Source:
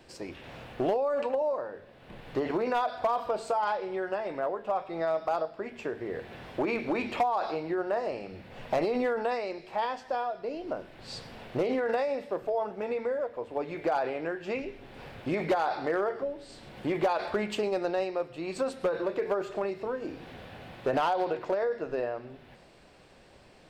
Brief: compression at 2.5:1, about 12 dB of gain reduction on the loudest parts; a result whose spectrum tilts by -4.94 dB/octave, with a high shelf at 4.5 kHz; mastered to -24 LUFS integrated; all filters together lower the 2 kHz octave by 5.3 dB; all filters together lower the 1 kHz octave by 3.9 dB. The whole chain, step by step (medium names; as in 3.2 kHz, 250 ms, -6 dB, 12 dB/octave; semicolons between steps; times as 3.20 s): peaking EQ 1 kHz -4.5 dB; peaking EQ 2 kHz -4 dB; treble shelf 4.5 kHz -7.5 dB; compression 2.5:1, threshold -44 dBFS; trim +19.5 dB